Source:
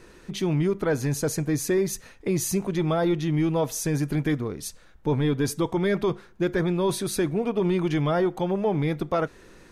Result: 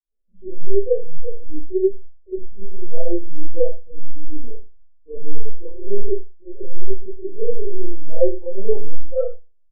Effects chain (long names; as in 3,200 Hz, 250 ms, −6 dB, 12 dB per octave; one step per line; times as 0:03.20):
low-shelf EQ 200 Hz +5.5 dB
brickwall limiter −18.5 dBFS, peak gain reduction 5.5 dB
linear-prediction vocoder at 8 kHz pitch kept
parametric band 530 Hz +13.5 dB 0.77 octaves
notch filter 1,100 Hz, Q 9.8
single-tap delay 101 ms −14 dB
four-comb reverb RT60 0.51 s, combs from 29 ms, DRR −7.5 dB
gain on a spectral selection 0:06.65–0:08.05, 550–3,000 Hz −8 dB
mains-hum notches 60/120/180 Hz
every bin expanded away from the loudest bin 2.5 to 1
level −4.5 dB